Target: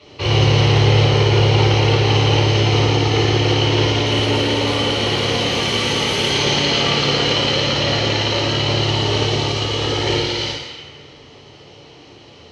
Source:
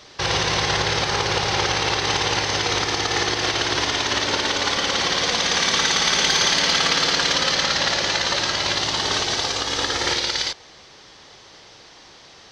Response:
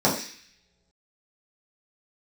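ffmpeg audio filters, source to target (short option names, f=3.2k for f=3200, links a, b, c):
-filter_complex "[0:a]asettb=1/sr,asplit=3[a][b][c];[a]atrim=end=4.034[d];[b]atrim=start=4.03:end=6.29,asetpts=PTS-STARTPTS,afade=t=in:d=0.004:c=qsin,afade=t=out:st=2.256:d=0.004:c=qsin,aeval=exprs='0.188*(abs(mod(val(0)/0.188+3,4)-2)-1)':c=same[e];[c]atrim=start=6.286[f];[d][e]acrossfade=d=0.004:c1=hsin:c2=qsin[g];[g][f]acrossfade=d=0.004:c1=qsin:c2=hsin[h];[1:a]atrim=start_sample=2205,asetrate=23373,aresample=44100[i];[h][i]afir=irnorm=-1:irlink=0,volume=-17dB"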